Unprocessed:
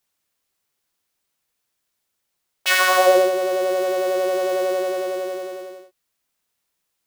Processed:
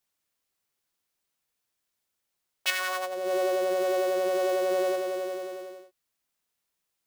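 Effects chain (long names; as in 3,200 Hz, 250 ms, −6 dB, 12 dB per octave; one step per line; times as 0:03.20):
0:02.70–0:04.96: compressor whose output falls as the input rises −22 dBFS, ratio −1
level −5.5 dB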